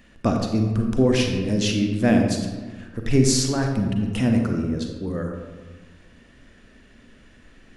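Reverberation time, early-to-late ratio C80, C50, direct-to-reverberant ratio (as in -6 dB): 1.4 s, 5.5 dB, 4.0 dB, 3.0 dB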